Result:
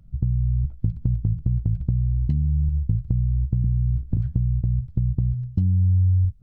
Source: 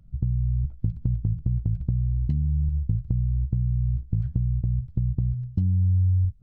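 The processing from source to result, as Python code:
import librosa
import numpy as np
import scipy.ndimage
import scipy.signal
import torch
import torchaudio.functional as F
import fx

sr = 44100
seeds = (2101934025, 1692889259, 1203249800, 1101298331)

y = fx.band_squash(x, sr, depth_pct=100, at=(3.64, 4.17))
y = y * 10.0 ** (2.5 / 20.0)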